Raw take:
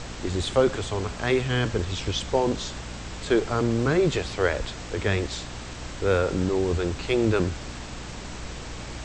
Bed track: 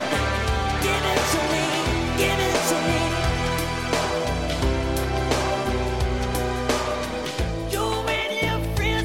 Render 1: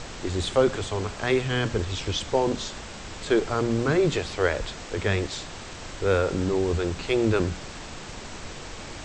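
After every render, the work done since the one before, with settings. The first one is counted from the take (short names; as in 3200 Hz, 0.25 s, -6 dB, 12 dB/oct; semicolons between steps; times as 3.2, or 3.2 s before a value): notches 60/120/180/240/300 Hz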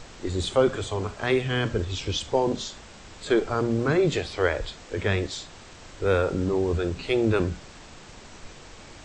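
noise print and reduce 7 dB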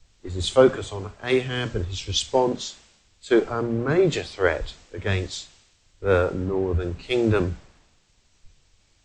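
three-band expander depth 100%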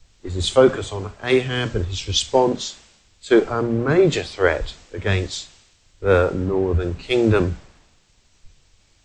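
gain +4 dB; limiter -3 dBFS, peak gain reduction 3 dB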